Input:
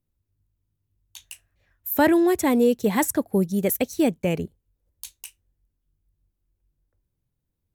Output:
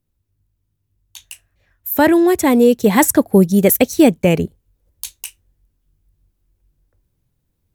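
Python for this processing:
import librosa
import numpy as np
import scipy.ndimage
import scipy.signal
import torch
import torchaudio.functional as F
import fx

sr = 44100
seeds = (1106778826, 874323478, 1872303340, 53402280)

y = fx.rider(x, sr, range_db=10, speed_s=0.5)
y = y * 10.0 ** (9.0 / 20.0)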